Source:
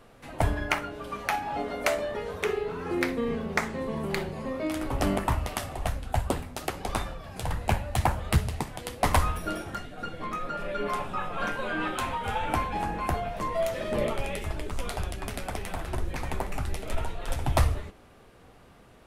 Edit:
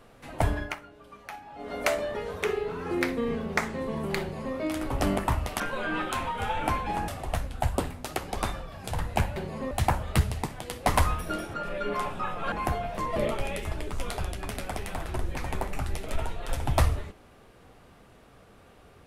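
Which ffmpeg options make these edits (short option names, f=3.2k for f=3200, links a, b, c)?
-filter_complex "[0:a]asplit=10[a][b][c][d][e][f][g][h][i][j];[a]atrim=end=0.76,asetpts=PTS-STARTPTS,afade=t=out:st=0.57:d=0.19:silence=0.223872[k];[b]atrim=start=0.76:end=1.58,asetpts=PTS-STARTPTS,volume=-13dB[l];[c]atrim=start=1.58:end=5.602,asetpts=PTS-STARTPTS,afade=t=in:d=0.19:silence=0.223872[m];[d]atrim=start=11.458:end=12.942[n];[e]atrim=start=5.598:end=7.882[o];[f]atrim=start=4.198:end=4.552[p];[g]atrim=start=7.878:end=9.712[q];[h]atrim=start=10.478:end=11.462[r];[i]atrim=start=12.938:end=13.582[s];[j]atrim=start=13.948[t];[k][l][m]concat=n=3:v=0:a=1[u];[u][n]acrossfade=d=0.004:c1=hsin:c2=hsin[v];[v][o]acrossfade=d=0.004:c1=hsin:c2=hsin[w];[w][p]acrossfade=d=0.004:c1=hsin:c2=hsin[x];[x][q]acrossfade=d=0.004:c1=hsin:c2=hsin[y];[y][r]acrossfade=d=0.004:c1=hsin:c2=hsin[z];[z][s]acrossfade=d=0.004:c1=hsin:c2=hsin[aa];[aa][t]acrossfade=d=0.004:c1=hsin:c2=hsin"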